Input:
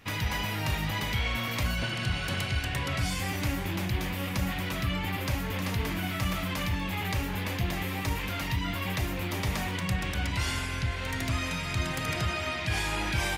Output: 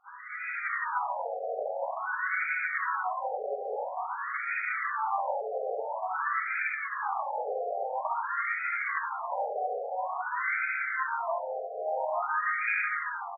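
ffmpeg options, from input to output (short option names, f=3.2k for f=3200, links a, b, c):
-filter_complex "[0:a]highshelf=f=2.7k:g=-7.5,acrossover=split=160|5100[a][b][c];[a]alimiter=level_in=7dB:limit=-24dB:level=0:latency=1:release=177,volume=-7dB[d];[b]dynaudnorm=f=140:g=7:m=14.5dB[e];[c]asplit=2[f][g];[g]adelay=25,volume=-6dB[h];[f][h]amix=inputs=2:normalize=0[i];[d][e][i]amix=inputs=3:normalize=0,equalizer=f=66:t=o:w=0.29:g=12.5,asplit=2[j][k];[k]adelay=67,lowpass=f=2.1k:p=1,volume=-4dB,asplit=2[l][m];[m]adelay=67,lowpass=f=2.1k:p=1,volume=0.27,asplit=2[n][o];[o]adelay=67,lowpass=f=2.1k:p=1,volume=0.27,asplit=2[p][q];[q]adelay=67,lowpass=f=2.1k:p=1,volume=0.27[r];[j][l][n][p][r]amix=inputs=5:normalize=0,asplit=4[s][t][u][v];[t]asetrate=55563,aresample=44100,atempo=0.793701,volume=-11dB[w];[u]asetrate=58866,aresample=44100,atempo=0.749154,volume=-11dB[x];[v]asetrate=66075,aresample=44100,atempo=0.66742,volume=-11dB[y];[s][w][x][y]amix=inputs=4:normalize=0,flanger=delay=2.5:depth=8.4:regen=84:speed=0.17:shape=sinusoidal,afftfilt=real='re*between(b*sr/1024,550*pow(1800/550,0.5+0.5*sin(2*PI*0.49*pts/sr))/1.41,550*pow(1800/550,0.5+0.5*sin(2*PI*0.49*pts/sr))*1.41)':imag='im*between(b*sr/1024,550*pow(1800/550,0.5+0.5*sin(2*PI*0.49*pts/sr))/1.41,550*pow(1800/550,0.5+0.5*sin(2*PI*0.49*pts/sr))*1.41)':win_size=1024:overlap=0.75,volume=-1dB"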